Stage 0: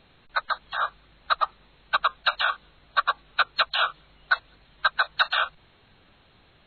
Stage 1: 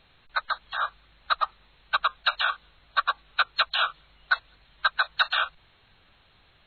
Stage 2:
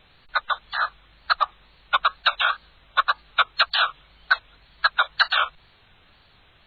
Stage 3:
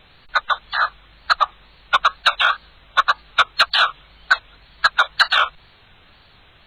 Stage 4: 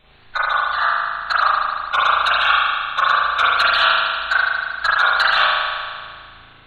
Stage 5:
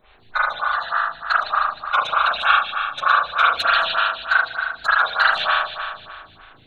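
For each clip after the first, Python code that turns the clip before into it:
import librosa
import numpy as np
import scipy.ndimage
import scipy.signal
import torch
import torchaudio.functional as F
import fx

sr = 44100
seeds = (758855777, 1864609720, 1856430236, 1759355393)

y1 = fx.peak_eq(x, sr, hz=270.0, db=-7.5, octaves=2.7)
y2 = fx.wow_flutter(y1, sr, seeds[0], rate_hz=2.1, depth_cents=110.0)
y2 = y2 * librosa.db_to_amplitude(4.0)
y3 = 10.0 ** (-8.5 / 20.0) * np.tanh(y2 / 10.0 ** (-8.5 / 20.0))
y3 = y3 * librosa.db_to_amplitude(5.5)
y4 = fx.rev_spring(y3, sr, rt60_s=1.9, pass_ms=(36,), chirp_ms=45, drr_db=-8.5)
y4 = y4 * librosa.db_to_amplitude(-6.0)
y5 = fx.stagger_phaser(y4, sr, hz=3.3)
y5 = y5 * librosa.db_to_amplitude(1.0)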